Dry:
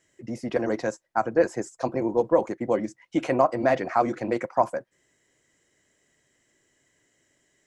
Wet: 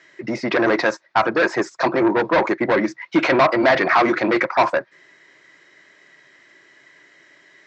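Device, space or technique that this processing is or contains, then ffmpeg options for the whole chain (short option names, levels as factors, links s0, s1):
overdrive pedal into a guitar cabinet: -filter_complex "[0:a]asplit=2[s0][s1];[s1]highpass=f=720:p=1,volume=17.8,asoftclip=type=tanh:threshold=0.473[s2];[s0][s2]amix=inputs=2:normalize=0,lowpass=f=6200:p=1,volume=0.501,highpass=93,equalizer=f=100:t=q:w=4:g=-8,equalizer=f=240:t=q:w=4:g=-7,equalizer=f=490:t=q:w=4:g=-9,equalizer=f=750:t=q:w=4:g=-6,equalizer=f=3000:t=q:w=4:g=-8,lowpass=f=4400:w=0.5412,lowpass=f=4400:w=1.3066,volume=1.5"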